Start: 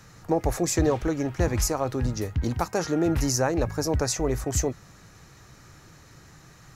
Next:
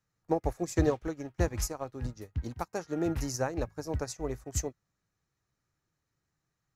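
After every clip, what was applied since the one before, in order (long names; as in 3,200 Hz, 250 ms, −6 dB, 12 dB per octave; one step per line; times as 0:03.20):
expander for the loud parts 2.5 to 1, over −39 dBFS
level −1.5 dB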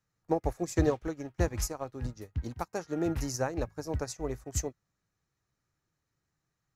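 no processing that can be heard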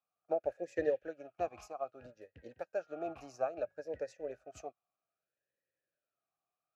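formant filter swept between two vowels a-e 0.62 Hz
level +5 dB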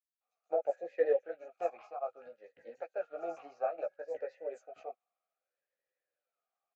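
multi-voice chorus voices 4, 1.5 Hz, delay 15 ms, depth 3 ms
loudspeaker in its box 340–7,000 Hz, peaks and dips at 340 Hz −3 dB, 500 Hz +8 dB, 770 Hz +7 dB, 1,300 Hz +4 dB, 2,100 Hz +6 dB, 5,600 Hz −8 dB
multiband delay without the direct sound highs, lows 210 ms, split 5,200 Hz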